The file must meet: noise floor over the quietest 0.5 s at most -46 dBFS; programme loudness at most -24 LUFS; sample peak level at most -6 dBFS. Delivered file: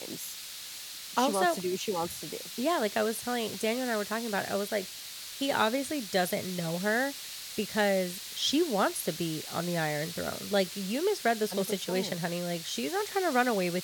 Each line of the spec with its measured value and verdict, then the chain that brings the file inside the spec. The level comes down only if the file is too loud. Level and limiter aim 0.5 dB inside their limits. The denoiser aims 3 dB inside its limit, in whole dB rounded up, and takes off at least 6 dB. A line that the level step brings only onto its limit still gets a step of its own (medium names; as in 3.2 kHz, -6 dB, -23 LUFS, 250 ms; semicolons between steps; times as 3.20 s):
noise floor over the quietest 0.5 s -43 dBFS: fail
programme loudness -30.5 LUFS: pass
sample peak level -12.0 dBFS: pass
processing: noise reduction 6 dB, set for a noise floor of -43 dBFS